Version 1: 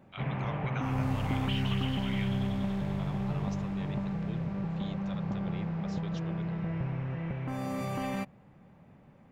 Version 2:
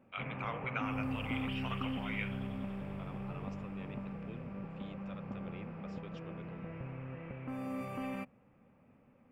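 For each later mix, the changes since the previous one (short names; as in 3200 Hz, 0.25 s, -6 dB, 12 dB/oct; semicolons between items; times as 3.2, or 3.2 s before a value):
second voice -7.5 dB; background -9.5 dB; master: add thirty-one-band EQ 160 Hz -5 dB, 250 Hz +8 dB, 500 Hz +7 dB, 1250 Hz +6 dB, 2500 Hz +8 dB, 4000 Hz -10 dB, 6300 Hz -11 dB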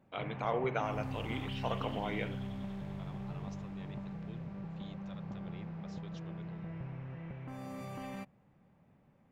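first voice: remove HPF 1400 Hz 12 dB/oct; master: add thirty-one-band EQ 160 Hz +5 dB, 250 Hz -8 dB, 500 Hz -7 dB, 1250 Hz -6 dB, 2500 Hz -8 dB, 4000 Hz +10 dB, 6300 Hz +11 dB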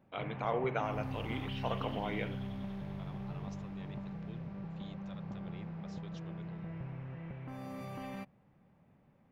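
first voice: add air absorption 64 m; background: add bell 7600 Hz -9 dB 0.39 oct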